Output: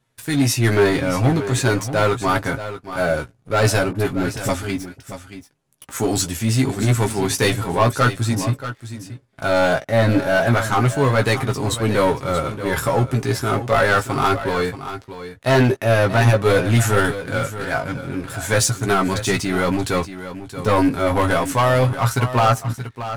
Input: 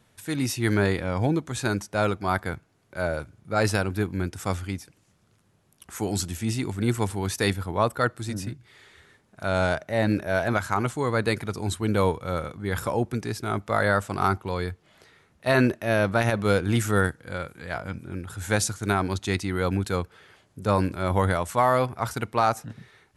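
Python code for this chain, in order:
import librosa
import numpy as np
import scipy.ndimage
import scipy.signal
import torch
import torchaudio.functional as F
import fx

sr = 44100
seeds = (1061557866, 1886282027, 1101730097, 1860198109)

y = x + 0.49 * np.pad(x, (int(7.4 * sr / 1000.0), 0))[:len(x)]
y = fx.leveller(y, sr, passes=3)
y = fx.dispersion(y, sr, late='highs', ms=42.0, hz=850.0, at=(3.91, 4.49))
y = fx.chorus_voices(y, sr, voices=4, hz=0.15, base_ms=16, depth_ms=2.2, mix_pct=35)
y = y + 10.0 ** (-12.0 / 20.0) * np.pad(y, (int(630 * sr / 1000.0), 0))[:len(y)]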